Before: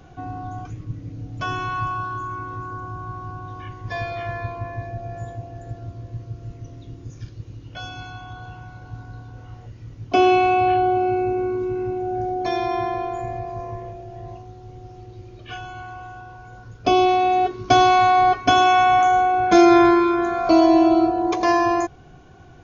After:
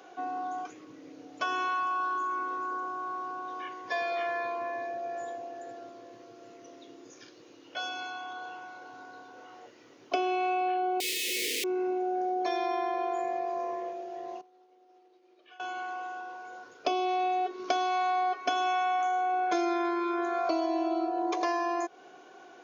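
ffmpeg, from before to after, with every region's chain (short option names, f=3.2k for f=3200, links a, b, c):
-filter_complex "[0:a]asettb=1/sr,asplit=3[a][b][c];[a]atrim=end=11.004[d];[b]atrim=start=11:end=11.64,asetpts=PTS-STARTPTS,afade=t=in:d=0.004:c=qsin,afade=t=out:st=0.636:d=0.004:c=qsin,acontrast=20,aeval=exprs='(mod(8.41*val(0)+1,2)-1)/8.41':c=same,asuperstop=centerf=1000:order=12:qfactor=0.63[e];[c]atrim=start=11.636[f];[d][e]acrossfade=d=0.004:c1=hsin:c2=qsin[g];[g][f]acrossfade=d=0.004:c1=qsin:c2=hsin,asettb=1/sr,asplit=3[h][i][j];[h]atrim=end=14.414[k];[i]atrim=start=14.41:end=15.6,asetpts=PTS-STARTPTS,afade=t=in:d=0.004:c=qsin,afade=t=out:st=1.186:d=0.004:c=qsin,agate=range=-13dB:threshold=-34dB:ratio=16:release=100:detection=peak,acompressor=threshold=-51dB:ratio=6:attack=3.2:release=140:knee=1:detection=peak,highpass=210,lowpass=5.4k[l];[j]atrim=start=15.596[m];[k][l]acrossfade=d=0.004:c1=hsin:c2=qsin[n];[n][m]acrossfade=d=0.004:c1=qsin:c2=hsin,highpass=f=340:w=0.5412,highpass=f=340:w=1.3066,acompressor=threshold=-27dB:ratio=6"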